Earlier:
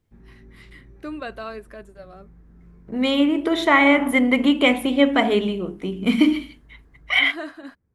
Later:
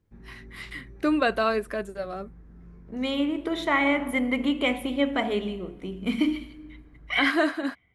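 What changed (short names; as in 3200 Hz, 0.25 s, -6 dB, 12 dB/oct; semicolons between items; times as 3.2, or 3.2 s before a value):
first voice +9.5 dB; second voice -10.5 dB; reverb: on, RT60 1.5 s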